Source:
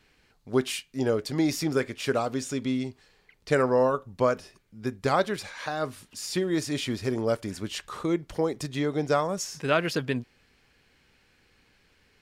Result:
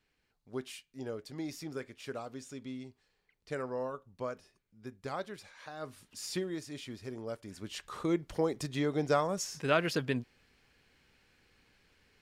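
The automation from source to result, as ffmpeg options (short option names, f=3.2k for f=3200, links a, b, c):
-af "volume=4.5dB,afade=t=in:st=5.73:d=0.55:silence=0.354813,afade=t=out:st=6.28:d=0.31:silence=0.375837,afade=t=in:st=7.43:d=0.66:silence=0.316228"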